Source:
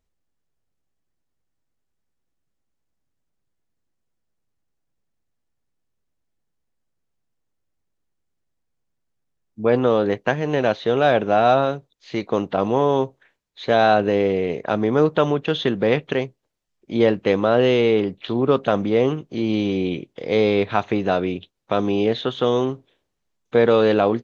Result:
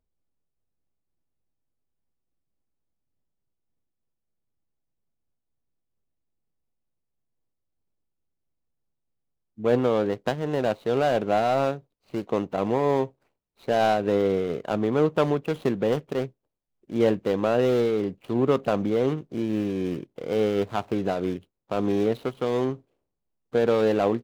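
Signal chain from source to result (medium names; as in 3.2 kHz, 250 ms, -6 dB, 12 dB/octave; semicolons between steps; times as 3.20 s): median filter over 25 samples; random flutter of the level, depth 50%; trim -1.5 dB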